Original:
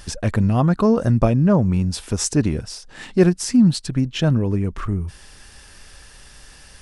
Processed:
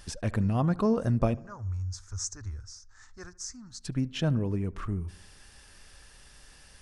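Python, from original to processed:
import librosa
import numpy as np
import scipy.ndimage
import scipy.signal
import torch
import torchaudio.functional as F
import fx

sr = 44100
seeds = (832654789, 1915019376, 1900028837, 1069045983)

y = fx.curve_eq(x, sr, hz=(100.0, 150.0, 280.0, 580.0, 1300.0, 1900.0, 2800.0, 6500.0, 10000.0), db=(0, -29, -24, -23, -3, -11, -25, 3, -19), at=(1.34, 3.81))
y = fx.echo_filtered(y, sr, ms=73, feedback_pct=58, hz=1800.0, wet_db=-20.5)
y = y * 10.0 ** (-9.0 / 20.0)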